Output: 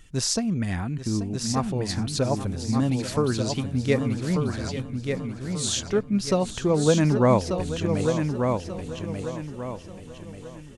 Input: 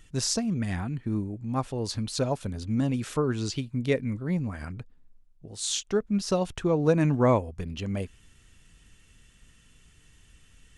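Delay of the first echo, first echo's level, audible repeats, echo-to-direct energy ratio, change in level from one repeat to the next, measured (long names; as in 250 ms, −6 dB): 835 ms, −13.0 dB, 9, −4.0 dB, repeats not evenly spaced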